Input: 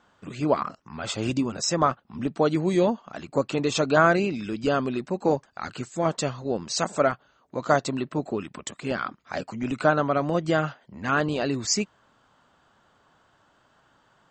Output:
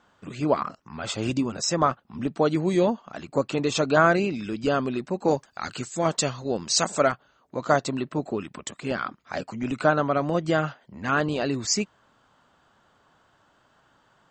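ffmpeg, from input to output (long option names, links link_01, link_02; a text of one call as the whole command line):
ffmpeg -i in.wav -filter_complex "[0:a]asettb=1/sr,asplit=3[link_01][link_02][link_03];[link_01]atrim=end=5.284[link_04];[link_02]atrim=start=5.28:end=7.12,asetpts=PTS-STARTPTS,afade=type=in:duration=0.004:curve=qsin,afade=type=out:start_time=1.836:duration=0.004:curve=qsin,highshelf=frequency=2900:gain=8[link_05];[link_03]atrim=start=7.116[link_06];[link_04][link_05]acrossfade=duration=0.004:curve1=hsin:curve2=qsin[link_07];[link_07][link_06]acrossfade=duration=0.004:curve1=qsin:curve2=hsin" out.wav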